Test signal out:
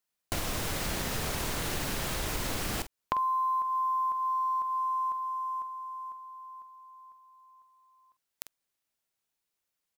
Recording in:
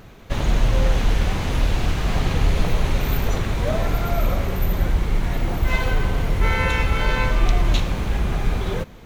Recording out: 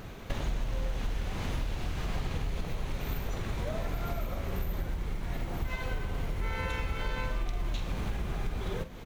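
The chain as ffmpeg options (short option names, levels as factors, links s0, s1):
-filter_complex "[0:a]acompressor=threshold=0.0355:ratio=12,acrusher=bits=9:mode=log:mix=0:aa=0.000001,asplit=2[s0][s1];[s1]adelay=47,volume=0.251[s2];[s0][s2]amix=inputs=2:normalize=0"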